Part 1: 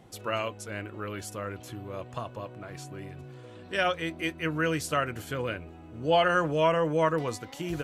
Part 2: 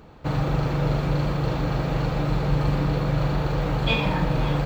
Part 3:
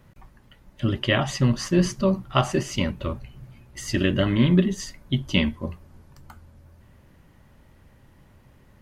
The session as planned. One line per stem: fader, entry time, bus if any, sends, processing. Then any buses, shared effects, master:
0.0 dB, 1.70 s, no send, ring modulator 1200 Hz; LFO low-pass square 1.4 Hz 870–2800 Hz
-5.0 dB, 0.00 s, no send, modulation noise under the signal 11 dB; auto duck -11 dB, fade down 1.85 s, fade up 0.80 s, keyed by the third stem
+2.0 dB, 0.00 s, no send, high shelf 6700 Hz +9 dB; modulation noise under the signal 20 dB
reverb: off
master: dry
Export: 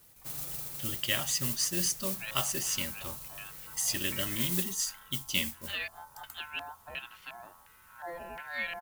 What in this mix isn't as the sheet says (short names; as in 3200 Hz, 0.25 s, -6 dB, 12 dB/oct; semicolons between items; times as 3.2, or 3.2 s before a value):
stem 1: entry 1.70 s -> 1.95 s; master: extra pre-emphasis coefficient 0.9